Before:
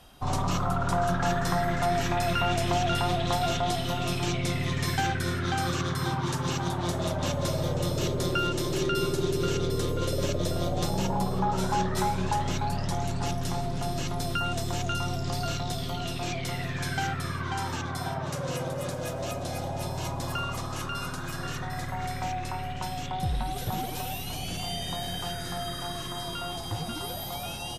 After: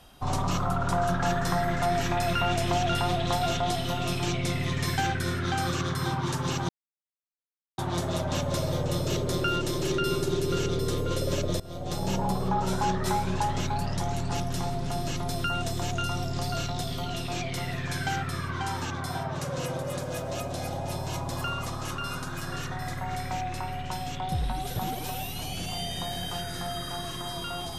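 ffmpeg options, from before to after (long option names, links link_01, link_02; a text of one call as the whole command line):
ffmpeg -i in.wav -filter_complex "[0:a]asplit=3[link_01][link_02][link_03];[link_01]atrim=end=6.69,asetpts=PTS-STARTPTS,afade=type=out:start_time=6.686:duration=0.004:curve=hsin,apad=pad_dur=1.09[link_04];[link_02]atrim=start=6.69:end=10.51,asetpts=PTS-STARTPTS,afade=type=in:duration=0.004:curve=hsin,afade=type=out:start_time=3.816:duration=0.004:curve=hsin:silence=0.1[link_05];[link_03]atrim=start=10.51,asetpts=PTS-STARTPTS,afade=type=in:duration=0.53:silence=0.1[link_06];[link_04][link_05][link_06]concat=n=3:v=0:a=1" out.wav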